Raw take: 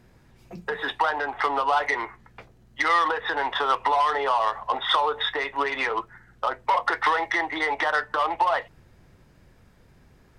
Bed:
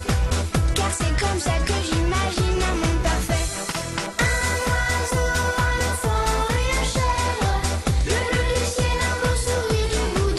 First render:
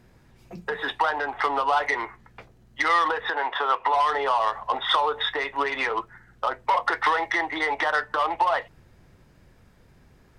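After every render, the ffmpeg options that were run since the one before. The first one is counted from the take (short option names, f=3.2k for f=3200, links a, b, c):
-filter_complex "[0:a]asettb=1/sr,asplit=3[a][b][c];[a]atrim=end=3.304[d];[b]atrim=start=3.3:end=3.94,asetpts=PTS-STARTPTS,afade=t=in:d=0.004:c=qsin,afade=t=out:st=0.636:d=0.004:c=qsin,bass=f=250:g=-14,treble=f=4k:g=-10[e];[c]atrim=start=3.936[f];[d][e]acrossfade=d=0.004:c1=hsin:c2=qsin[g];[g][f]acrossfade=d=0.004:c1=qsin:c2=hsin"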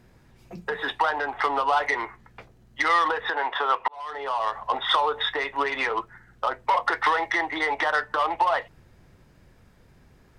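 -filter_complex "[0:a]asplit=2[a][b];[a]atrim=end=3.88,asetpts=PTS-STARTPTS,afade=t=out:st=3.876:d=0.004:c=hsin[c];[b]atrim=start=3.88,asetpts=PTS-STARTPTS,afade=t=in:d=0.77[d];[c][d]concat=n=2:v=0:a=1"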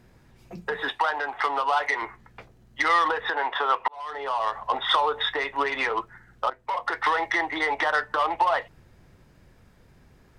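-filter_complex "[0:a]asettb=1/sr,asplit=3[a][b][c];[a]atrim=end=0.894[d];[b]atrim=start=0.89:end=2.02,asetpts=PTS-STARTPTS,afade=t=in:d=0.004:c=qsin,afade=t=out:st=1.126:d=0.004:c=qsin,lowshelf=f=340:g=-9.5[e];[c]atrim=start=2.016[f];[d][e]acrossfade=d=0.004:c1=hsin:c2=qsin[g];[g][f]acrossfade=d=0.004:c1=qsin:c2=hsin,asplit=2[h][i];[h]atrim=end=6.5,asetpts=PTS-STARTPTS,afade=t=out:st=6.496:d=0.004:c=hsin:silence=0.237137[j];[i]atrim=start=6.5,asetpts=PTS-STARTPTS,afade=t=in:d=0.73:silence=0.237137[k];[j][k]concat=n=2:v=0:a=1"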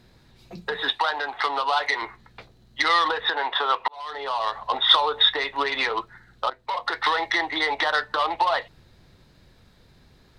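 -af "equalizer=f=4k:t=o:w=0.52:g=13.5"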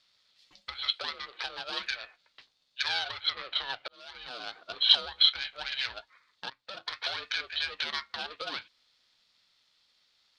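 -af "bandpass=f=4.2k:t=q:w=1.3:csg=0,aeval=exprs='val(0)*sin(2*PI*380*n/s)':c=same"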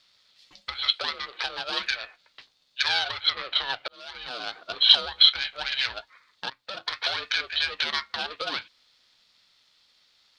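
-af "volume=6dB,alimiter=limit=-2dB:level=0:latency=1"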